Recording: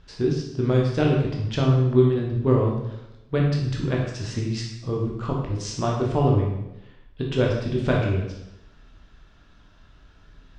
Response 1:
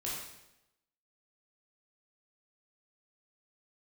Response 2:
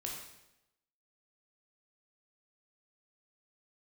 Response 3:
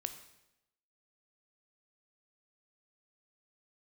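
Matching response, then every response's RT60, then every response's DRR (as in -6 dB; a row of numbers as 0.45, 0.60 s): 2; 0.90, 0.90, 0.90 s; -6.5, -2.0, 8.0 dB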